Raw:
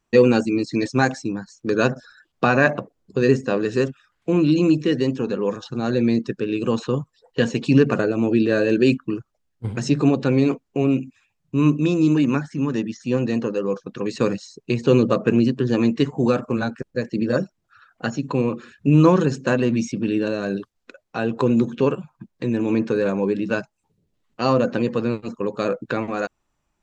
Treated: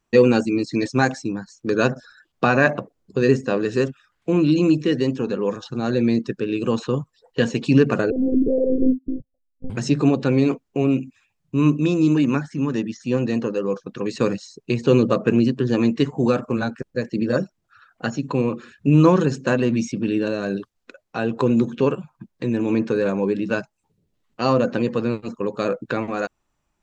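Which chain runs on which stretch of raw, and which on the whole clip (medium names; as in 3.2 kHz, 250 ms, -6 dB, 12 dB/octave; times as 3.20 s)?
8.10–9.70 s: steep low-pass 690 Hz 72 dB/octave + monotone LPC vocoder at 8 kHz 260 Hz
whole clip: none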